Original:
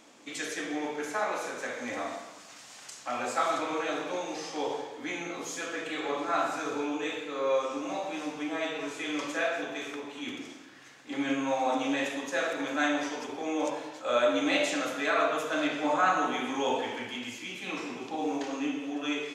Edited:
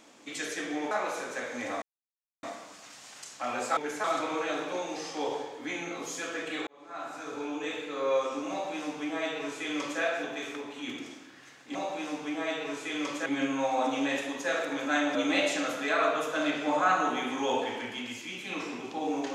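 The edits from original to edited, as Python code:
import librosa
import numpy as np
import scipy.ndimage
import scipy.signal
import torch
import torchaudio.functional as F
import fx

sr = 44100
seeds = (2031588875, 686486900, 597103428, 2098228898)

y = fx.edit(x, sr, fx.move(start_s=0.91, length_s=0.27, to_s=3.43),
    fx.insert_silence(at_s=2.09, length_s=0.61),
    fx.fade_in_span(start_s=6.06, length_s=1.19),
    fx.duplicate(start_s=7.89, length_s=1.51, to_s=11.14),
    fx.cut(start_s=13.03, length_s=1.29), tone=tone)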